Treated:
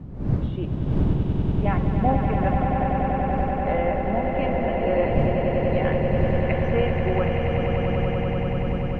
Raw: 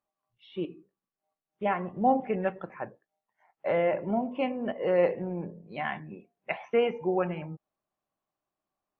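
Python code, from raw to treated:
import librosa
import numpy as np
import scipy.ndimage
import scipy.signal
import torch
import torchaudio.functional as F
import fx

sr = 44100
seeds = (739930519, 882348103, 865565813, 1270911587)

y = fx.dmg_wind(x, sr, seeds[0], corner_hz=160.0, level_db=-30.0)
y = fx.echo_swell(y, sr, ms=96, loudest=8, wet_db=-7)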